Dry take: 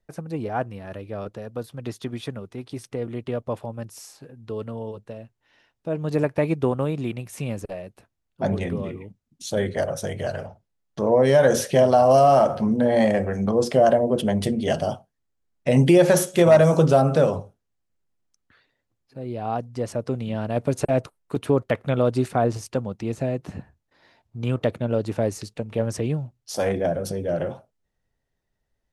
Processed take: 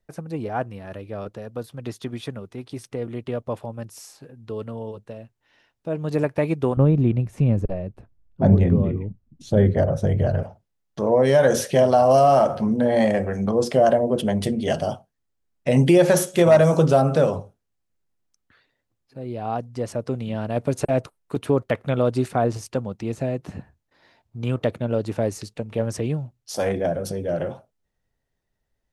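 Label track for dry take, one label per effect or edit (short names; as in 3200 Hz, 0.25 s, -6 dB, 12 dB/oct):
6.770000	10.430000	tilt -4 dB/oct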